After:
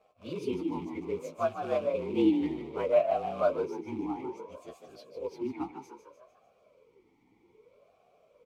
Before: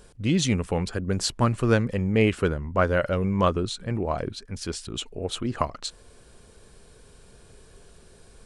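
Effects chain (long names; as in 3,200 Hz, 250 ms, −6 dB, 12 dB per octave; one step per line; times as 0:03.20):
partials spread apart or drawn together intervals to 114%
floating-point word with a short mantissa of 2 bits
echo with shifted repeats 150 ms, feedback 47%, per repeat +77 Hz, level −8.5 dB
formant filter swept between two vowels a-u 0.62 Hz
level +6 dB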